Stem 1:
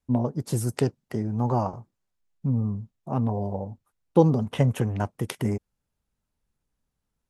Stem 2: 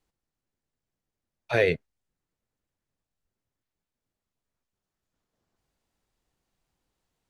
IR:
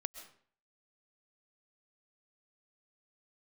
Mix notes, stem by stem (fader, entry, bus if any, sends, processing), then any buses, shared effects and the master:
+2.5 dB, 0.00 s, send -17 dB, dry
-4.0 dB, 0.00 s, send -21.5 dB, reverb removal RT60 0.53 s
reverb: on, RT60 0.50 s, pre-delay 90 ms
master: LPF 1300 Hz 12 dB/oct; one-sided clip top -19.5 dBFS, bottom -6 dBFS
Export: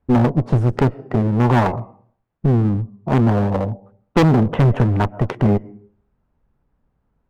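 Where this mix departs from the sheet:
stem 1 +2.5 dB -> +12.5 dB; reverb return +7.0 dB

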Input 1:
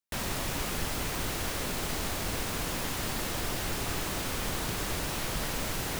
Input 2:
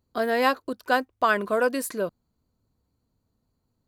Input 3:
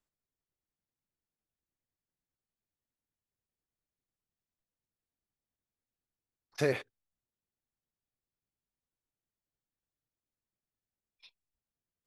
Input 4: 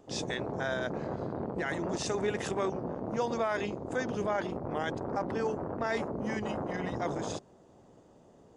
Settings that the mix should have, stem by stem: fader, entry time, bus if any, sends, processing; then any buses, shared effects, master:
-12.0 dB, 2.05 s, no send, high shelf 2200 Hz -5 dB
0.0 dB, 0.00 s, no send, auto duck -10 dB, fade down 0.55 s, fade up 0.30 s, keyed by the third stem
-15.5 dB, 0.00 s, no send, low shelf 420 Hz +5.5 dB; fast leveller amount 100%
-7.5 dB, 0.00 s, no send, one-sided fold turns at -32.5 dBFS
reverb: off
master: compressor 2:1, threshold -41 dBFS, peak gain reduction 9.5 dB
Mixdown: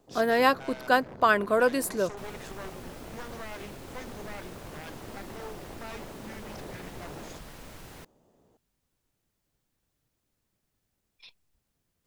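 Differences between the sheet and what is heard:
stem 3 -15.5 dB -> -27.0 dB; master: missing compressor 2:1, threshold -41 dBFS, peak gain reduction 9.5 dB

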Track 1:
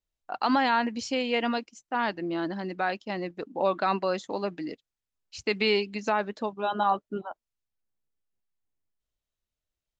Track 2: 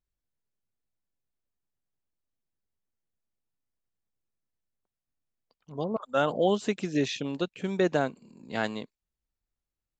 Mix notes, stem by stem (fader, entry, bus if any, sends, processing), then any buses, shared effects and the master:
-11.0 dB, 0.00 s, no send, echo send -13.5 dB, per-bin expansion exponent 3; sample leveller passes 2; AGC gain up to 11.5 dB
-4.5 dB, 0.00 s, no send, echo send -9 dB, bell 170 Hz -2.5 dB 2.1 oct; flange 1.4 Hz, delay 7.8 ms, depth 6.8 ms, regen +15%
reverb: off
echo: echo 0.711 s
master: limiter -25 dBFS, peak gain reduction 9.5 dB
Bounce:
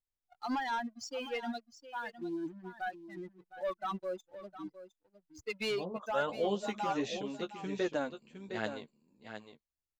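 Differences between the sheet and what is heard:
stem 1: missing AGC gain up to 11.5 dB; master: missing limiter -25 dBFS, peak gain reduction 9.5 dB

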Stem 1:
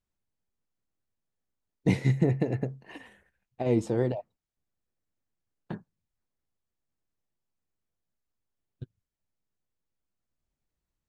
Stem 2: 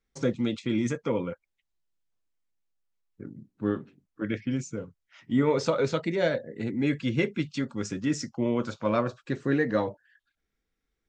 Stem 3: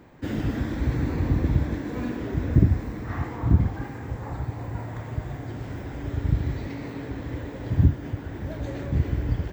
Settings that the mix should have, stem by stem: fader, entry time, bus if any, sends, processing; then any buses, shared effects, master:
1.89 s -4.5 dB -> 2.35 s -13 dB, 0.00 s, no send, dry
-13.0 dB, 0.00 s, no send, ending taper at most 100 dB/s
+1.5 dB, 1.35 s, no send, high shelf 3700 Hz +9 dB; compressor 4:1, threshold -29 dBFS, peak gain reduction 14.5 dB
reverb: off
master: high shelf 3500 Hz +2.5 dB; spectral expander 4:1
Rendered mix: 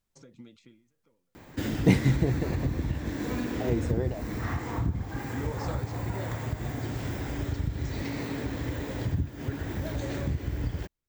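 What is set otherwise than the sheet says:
stem 1 -4.5 dB -> +4.0 dB; master: missing spectral expander 4:1

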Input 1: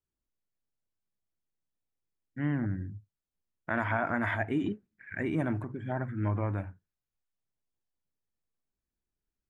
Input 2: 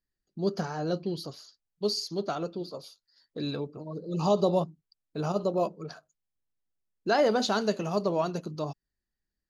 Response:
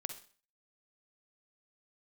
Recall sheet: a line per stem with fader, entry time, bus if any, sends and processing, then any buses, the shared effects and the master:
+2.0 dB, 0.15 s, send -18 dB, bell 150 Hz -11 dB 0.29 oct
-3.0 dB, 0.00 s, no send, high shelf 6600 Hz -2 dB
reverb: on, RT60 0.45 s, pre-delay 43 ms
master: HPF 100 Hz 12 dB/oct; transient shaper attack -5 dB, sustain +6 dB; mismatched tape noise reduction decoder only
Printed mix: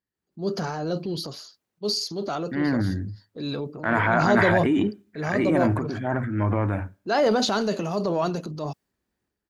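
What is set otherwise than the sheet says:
stem 1 +2.0 dB -> +8.5 dB; stem 2 -3.0 dB -> +3.5 dB

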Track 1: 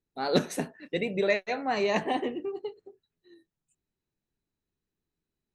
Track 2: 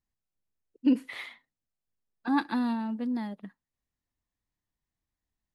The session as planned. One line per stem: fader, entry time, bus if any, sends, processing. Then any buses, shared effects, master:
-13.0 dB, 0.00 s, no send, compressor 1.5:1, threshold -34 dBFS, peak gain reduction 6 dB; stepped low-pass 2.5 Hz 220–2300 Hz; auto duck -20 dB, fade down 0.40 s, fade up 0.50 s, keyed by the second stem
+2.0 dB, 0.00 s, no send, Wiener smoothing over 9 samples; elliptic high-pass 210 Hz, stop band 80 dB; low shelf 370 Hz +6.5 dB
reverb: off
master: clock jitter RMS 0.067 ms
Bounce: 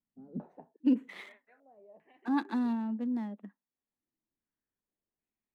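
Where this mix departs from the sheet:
stem 2 +2.0 dB -> -6.0 dB; master: missing clock jitter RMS 0.067 ms

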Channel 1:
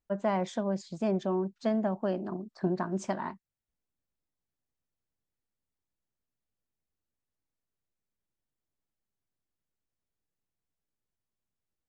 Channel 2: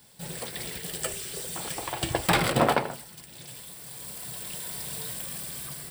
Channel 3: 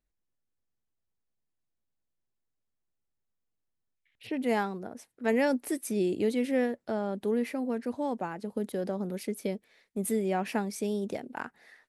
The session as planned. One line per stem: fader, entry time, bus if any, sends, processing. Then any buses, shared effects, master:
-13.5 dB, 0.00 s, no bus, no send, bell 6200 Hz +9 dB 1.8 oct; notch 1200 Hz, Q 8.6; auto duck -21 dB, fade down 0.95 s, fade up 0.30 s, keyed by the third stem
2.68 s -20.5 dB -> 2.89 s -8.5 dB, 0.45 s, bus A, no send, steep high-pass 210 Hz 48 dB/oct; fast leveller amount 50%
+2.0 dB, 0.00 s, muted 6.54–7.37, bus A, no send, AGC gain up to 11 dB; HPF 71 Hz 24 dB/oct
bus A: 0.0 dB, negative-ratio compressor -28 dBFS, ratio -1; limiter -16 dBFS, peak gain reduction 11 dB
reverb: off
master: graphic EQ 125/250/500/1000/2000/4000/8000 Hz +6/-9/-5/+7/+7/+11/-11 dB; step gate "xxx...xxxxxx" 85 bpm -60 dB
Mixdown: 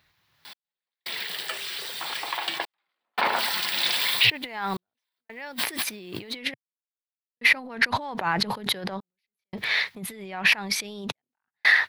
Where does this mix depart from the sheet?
stem 1: muted; stem 3 +2.0 dB -> +8.0 dB

